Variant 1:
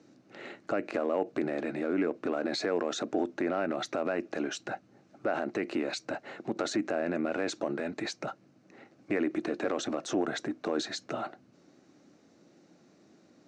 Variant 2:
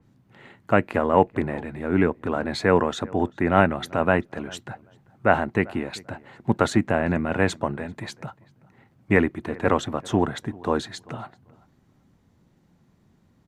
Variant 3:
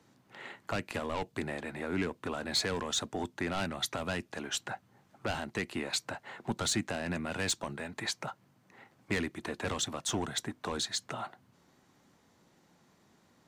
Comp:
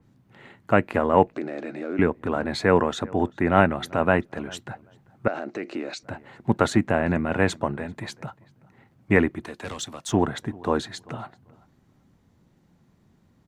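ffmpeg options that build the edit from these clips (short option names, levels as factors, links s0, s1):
-filter_complex "[0:a]asplit=2[s0][s1];[1:a]asplit=4[s2][s3][s4][s5];[s2]atrim=end=1.332[s6];[s0]atrim=start=1.328:end=1.992[s7];[s3]atrim=start=1.988:end=5.282[s8];[s1]atrim=start=5.278:end=6.032[s9];[s4]atrim=start=6.028:end=9.452[s10];[2:a]atrim=start=9.448:end=10.122[s11];[s5]atrim=start=10.118[s12];[s6][s7]acrossfade=d=0.004:c1=hsin:c2=hsin[s13];[s13][s8]acrossfade=d=0.004:c1=hsin:c2=hsin[s14];[s14][s9]acrossfade=d=0.004:c1=hsin:c2=hsin[s15];[s15][s10]acrossfade=d=0.004:c1=hsin:c2=hsin[s16];[s16][s11]acrossfade=d=0.004:c1=hsin:c2=hsin[s17];[s17][s12]acrossfade=d=0.004:c1=hsin:c2=hsin"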